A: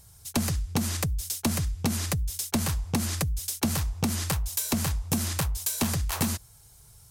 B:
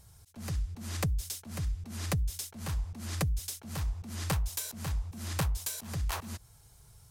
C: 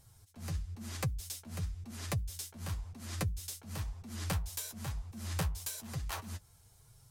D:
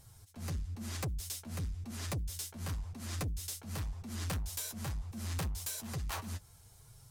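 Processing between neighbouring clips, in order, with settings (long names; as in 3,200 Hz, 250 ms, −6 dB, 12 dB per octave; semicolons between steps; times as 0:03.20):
high-shelf EQ 4,800 Hz −7 dB; volume swells 267 ms; level −1.5 dB
flanger 1 Hz, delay 7.2 ms, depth 5.4 ms, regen +32%
soft clipping −36 dBFS, distortion −10 dB; level +3.5 dB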